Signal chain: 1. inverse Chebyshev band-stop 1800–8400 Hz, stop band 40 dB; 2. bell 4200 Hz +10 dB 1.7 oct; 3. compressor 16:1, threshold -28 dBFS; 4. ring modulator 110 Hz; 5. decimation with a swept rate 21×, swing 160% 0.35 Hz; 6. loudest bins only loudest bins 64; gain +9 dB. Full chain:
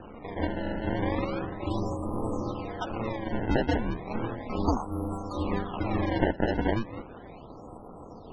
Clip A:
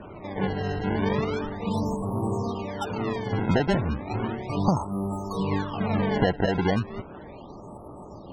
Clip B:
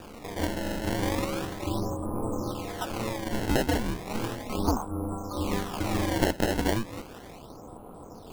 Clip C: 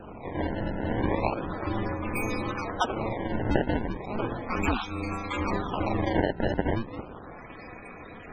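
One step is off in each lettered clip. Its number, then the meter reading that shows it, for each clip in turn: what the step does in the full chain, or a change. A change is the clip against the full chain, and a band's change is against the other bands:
4, crest factor change -3.0 dB; 6, 4 kHz band +7.0 dB; 1, 2 kHz band +2.5 dB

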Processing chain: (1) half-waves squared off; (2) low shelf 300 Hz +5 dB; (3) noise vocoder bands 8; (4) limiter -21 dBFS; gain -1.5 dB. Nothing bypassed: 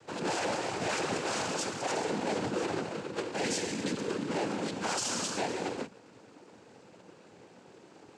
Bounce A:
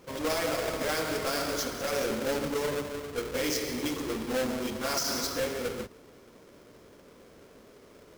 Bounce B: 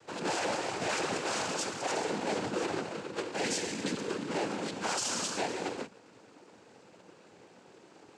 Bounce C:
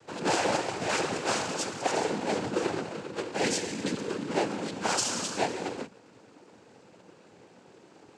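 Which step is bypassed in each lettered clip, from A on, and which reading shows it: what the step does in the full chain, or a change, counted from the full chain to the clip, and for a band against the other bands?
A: 3, 1 kHz band -3.0 dB; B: 2, 125 Hz band -3.0 dB; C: 4, crest factor change +7.5 dB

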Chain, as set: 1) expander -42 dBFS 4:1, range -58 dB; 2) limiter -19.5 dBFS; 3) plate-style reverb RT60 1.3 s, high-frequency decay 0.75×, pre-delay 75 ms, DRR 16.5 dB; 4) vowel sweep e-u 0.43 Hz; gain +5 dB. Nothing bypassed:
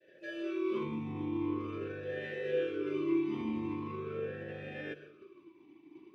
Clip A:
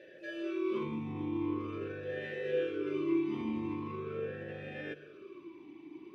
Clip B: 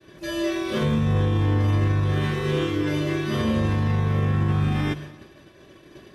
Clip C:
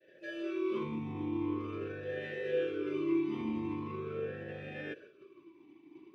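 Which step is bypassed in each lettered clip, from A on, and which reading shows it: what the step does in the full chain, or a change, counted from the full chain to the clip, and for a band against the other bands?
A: 1, momentary loudness spread change +3 LU; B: 4, 125 Hz band +13.5 dB; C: 3, momentary loudness spread change -4 LU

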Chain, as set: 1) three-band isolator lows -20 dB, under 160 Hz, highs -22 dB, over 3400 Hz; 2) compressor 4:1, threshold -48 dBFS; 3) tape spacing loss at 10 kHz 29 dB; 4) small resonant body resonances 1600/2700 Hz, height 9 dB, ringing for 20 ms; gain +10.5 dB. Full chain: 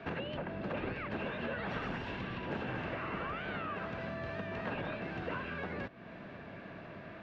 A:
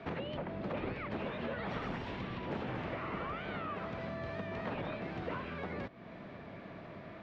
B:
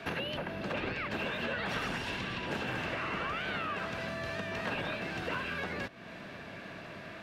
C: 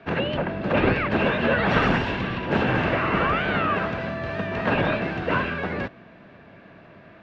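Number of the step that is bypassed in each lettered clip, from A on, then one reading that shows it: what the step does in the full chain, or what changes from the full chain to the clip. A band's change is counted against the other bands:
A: 4, 2 kHz band -3.5 dB; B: 3, 4 kHz band +7.5 dB; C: 2, mean gain reduction 12.0 dB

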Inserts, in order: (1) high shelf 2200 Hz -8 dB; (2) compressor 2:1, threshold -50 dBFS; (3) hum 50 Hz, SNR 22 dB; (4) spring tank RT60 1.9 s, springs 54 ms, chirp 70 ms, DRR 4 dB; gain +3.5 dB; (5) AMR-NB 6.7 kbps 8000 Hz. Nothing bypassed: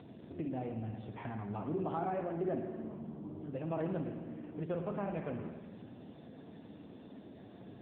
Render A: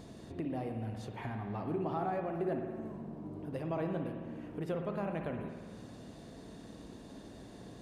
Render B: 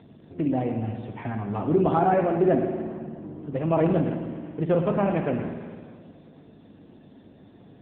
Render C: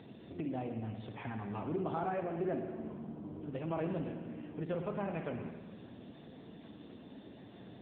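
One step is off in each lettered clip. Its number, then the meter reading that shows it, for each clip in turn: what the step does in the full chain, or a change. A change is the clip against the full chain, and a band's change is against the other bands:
5, 2 kHz band +2.5 dB; 2, mean gain reduction 7.5 dB; 1, 2 kHz band +3.0 dB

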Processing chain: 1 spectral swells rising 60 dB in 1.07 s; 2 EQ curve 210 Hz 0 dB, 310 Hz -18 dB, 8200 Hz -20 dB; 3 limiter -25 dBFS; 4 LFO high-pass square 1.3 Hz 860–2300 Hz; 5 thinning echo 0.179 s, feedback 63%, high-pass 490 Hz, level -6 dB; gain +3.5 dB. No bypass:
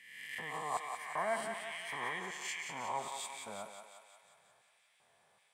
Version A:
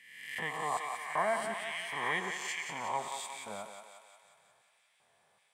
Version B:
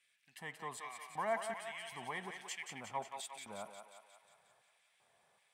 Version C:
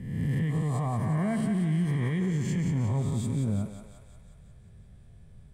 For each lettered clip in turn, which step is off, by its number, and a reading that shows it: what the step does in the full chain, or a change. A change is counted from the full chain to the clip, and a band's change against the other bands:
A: 3, mean gain reduction 2.0 dB; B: 1, 125 Hz band +3.5 dB; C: 4, 125 Hz band +35.0 dB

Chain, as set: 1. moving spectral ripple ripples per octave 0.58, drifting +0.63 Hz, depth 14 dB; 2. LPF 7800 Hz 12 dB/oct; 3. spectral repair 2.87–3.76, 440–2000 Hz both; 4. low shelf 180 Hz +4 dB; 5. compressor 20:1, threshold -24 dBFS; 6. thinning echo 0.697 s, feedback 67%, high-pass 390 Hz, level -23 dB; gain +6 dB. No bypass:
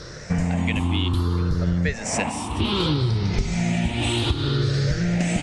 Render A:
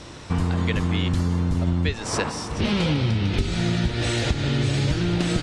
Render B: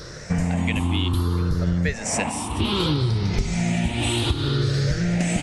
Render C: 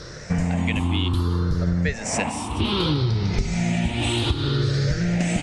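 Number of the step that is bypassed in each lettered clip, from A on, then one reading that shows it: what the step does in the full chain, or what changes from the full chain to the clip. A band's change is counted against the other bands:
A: 1, 8 kHz band -1.5 dB; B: 2, 8 kHz band +2.5 dB; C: 6, echo-to-direct -21.0 dB to none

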